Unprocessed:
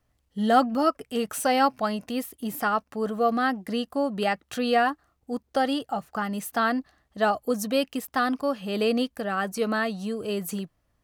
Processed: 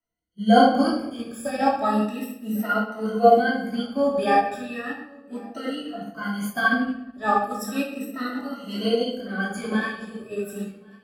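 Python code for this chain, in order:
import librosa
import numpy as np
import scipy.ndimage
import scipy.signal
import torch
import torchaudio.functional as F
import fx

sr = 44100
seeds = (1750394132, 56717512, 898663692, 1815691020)

p1 = fx.spec_ripple(x, sr, per_octave=1.9, drift_hz=0.35, depth_db=24)
p2 = fx.rotary(p1, sr, hz=0.9)
p3 = p2 + fx.echo_feedback(p2, sr, ms=1099, feedback_pct=36, wet_db=-20.5, dry=0)
p4 = fx.room_shoebox(p3, sr, seeds[0], volume_m3=450.0, walls='mixed', distance_m=2.8)
p5 = fx.upward_expand(p4, sr, threshold_db=-35.0, expansion=1.5)
y = p5 * librosa.db_to_amplitude(-4.5)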